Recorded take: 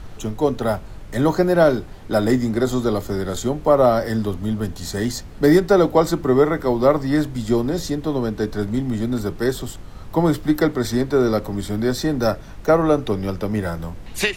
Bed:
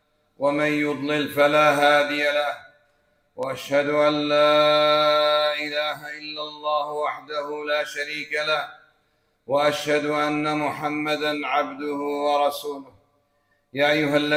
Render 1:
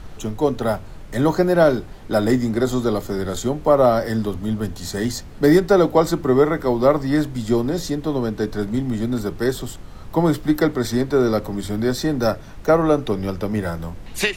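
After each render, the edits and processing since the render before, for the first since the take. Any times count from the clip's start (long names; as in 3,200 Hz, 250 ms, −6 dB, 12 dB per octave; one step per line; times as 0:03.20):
hum removal 50 Hz, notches 2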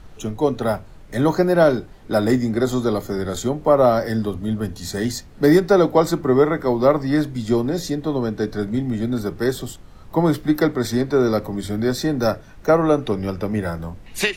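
noise reduction from a noise print 6 dB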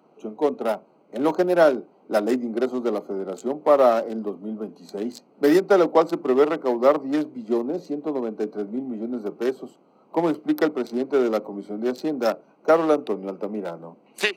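adaptive Wiener filter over 25 samples
Bessel high-pass filter 340 Hz, order 8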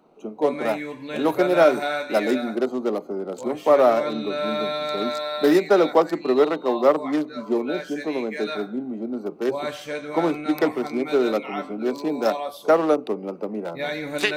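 mix in bed −9 dB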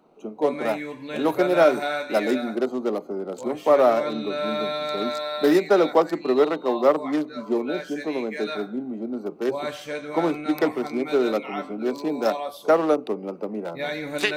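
level −1 dB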